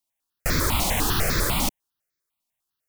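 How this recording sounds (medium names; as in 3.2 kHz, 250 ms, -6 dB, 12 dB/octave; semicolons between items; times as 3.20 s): notches that jump at a steady rate 10 Hz 440–2900 Hz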